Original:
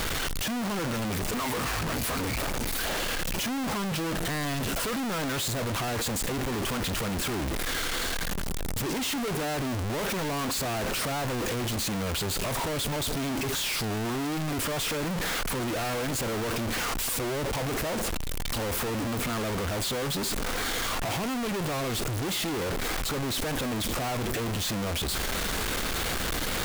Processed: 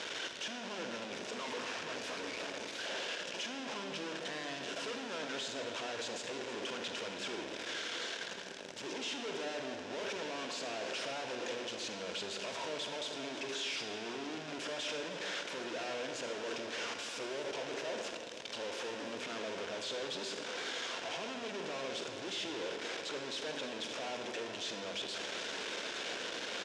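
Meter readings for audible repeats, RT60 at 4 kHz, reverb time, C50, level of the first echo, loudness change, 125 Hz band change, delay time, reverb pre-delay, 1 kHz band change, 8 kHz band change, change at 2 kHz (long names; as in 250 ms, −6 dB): 1, 1.2 s, 1.9 s, 5.0 dB, −14.5 dB, −10.0 dB, −25.5 dB, 317 ms, 39 ms, −11.0 dB, −13.5 dB, −8.0 dB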